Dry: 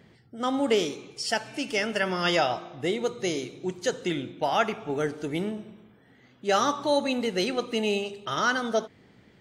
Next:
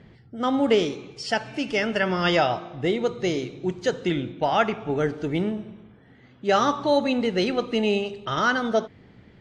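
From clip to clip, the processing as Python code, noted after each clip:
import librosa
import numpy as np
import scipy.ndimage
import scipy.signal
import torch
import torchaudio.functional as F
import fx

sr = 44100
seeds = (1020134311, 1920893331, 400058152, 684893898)

y = scipy.signal.sosfilt(scipy.signal.bessel(2, 4000.0, 'lowpass', norm='mag', fs=sr, output='sos'), x)
y = fx.low_shelf(y, sr, hz=110.0, db=10.5)
y = F.gain(torch.from_numpy(y), 3.0).numpy()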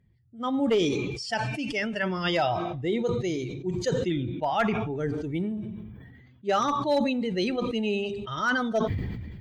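y = fx.bin_expand(x, sr, power=1.5)
y = fx.clip_asym(y, sr, top_db=-16.5, bottom_db=-13.0)
y = fx.sustainer(y, sr, db_per_s=32.0)
y = F.gain(torch.from_numpy(y), -2.5).numpy()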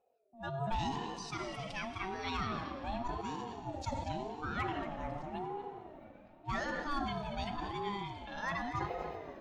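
y = x + 10.0 ** (-11.5 / 20.0) * np.pad(x, (int(233 * sr / 1000.0), 0))[:len(x)]
y = fx.rev_plate(y, sr, seeds[0], rt60_s=3.8, hf_ratio=0.85, predelay_ms=0, drr_db=9.0)
y = fx.ring_lfo(y, sr, carrier_hz=510.0, swing_pct=20, hz=0.89)
y = F.gain(torch.from_numpy(y), -9.0).numpy()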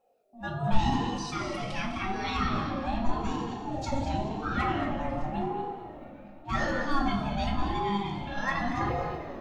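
y = x + 10.0 ** (-12.5 / 20.0) * np.pad(x, (int(202 * sr / 1000.0), 0))[:len(x)]
y = fx.room_shoebox(y, sr, seeds[1], volume_m3=410.0, walls='furnished', distance_m=2.2)
y = F.gain(torch.from_numpy(y), 3.5).numpy()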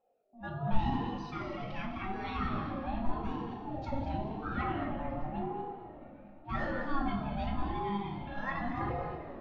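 y = fx.air_absorb(x, sr, metres=290.0)
y = F.gain(torch.from_numpy(y), -4.5).numpy()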